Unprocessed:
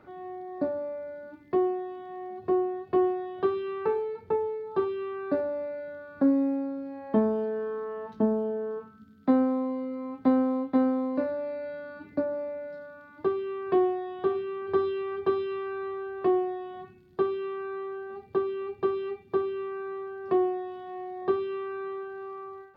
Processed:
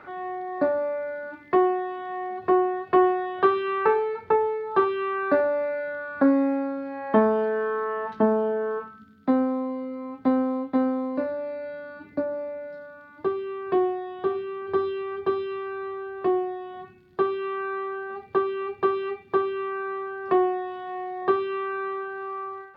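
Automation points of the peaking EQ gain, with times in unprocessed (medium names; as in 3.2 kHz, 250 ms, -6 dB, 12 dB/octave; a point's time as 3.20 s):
peaking EQ 1.6 kHz 2.8 oct
8.80 s +14.5 dB
9.30 s +3 dB
16.57 s +3 dB
17.62 s +10.5 dB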